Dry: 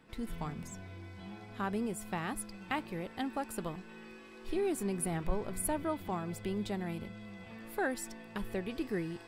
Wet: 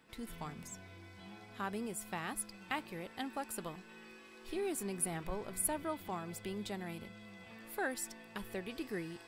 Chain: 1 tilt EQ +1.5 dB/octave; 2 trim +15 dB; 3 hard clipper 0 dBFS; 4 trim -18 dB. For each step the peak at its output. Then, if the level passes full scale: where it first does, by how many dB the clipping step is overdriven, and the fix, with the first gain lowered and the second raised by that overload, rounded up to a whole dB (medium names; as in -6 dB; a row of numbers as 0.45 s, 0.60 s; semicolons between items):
-18.0 dBFS, -3.0 dBFS, -3.0 dBFS, -21.0 dBFS; nothing clips